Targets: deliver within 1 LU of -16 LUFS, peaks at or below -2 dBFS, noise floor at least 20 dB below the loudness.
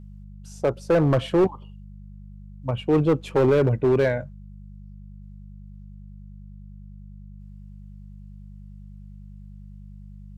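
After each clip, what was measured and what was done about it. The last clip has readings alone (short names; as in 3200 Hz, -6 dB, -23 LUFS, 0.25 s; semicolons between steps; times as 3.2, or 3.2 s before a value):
clipped 1.1%; flat tops at -13.5 dBFS; hum 50 Hz; harmonics up to 200 Hz; hum level -40 dBFS; loudness -22.0 LUFS; peak -13.5 dBFS; loudness target -16.0 LUFS
-> clip repair -13.5 dBFS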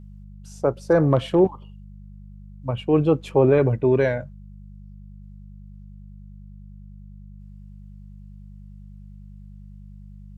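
clipped 0.0%; hum 50 Hz; harmonics up to 200 Hz; hum level -40 dBFS
-> de-hum 50 Hz, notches 4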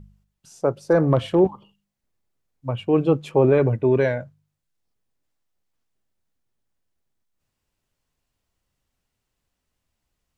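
hum none; loudness -20.5 LUFS; peak -5.5 dBFS; loudness target -16.0 LUFS
-> gain +4.5 dB; limiter -2 dBFS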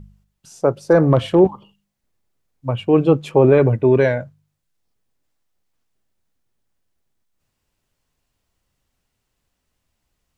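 loudness -16.5 LUFS; peak -2.0 dBFS; noise floor -76 dBFS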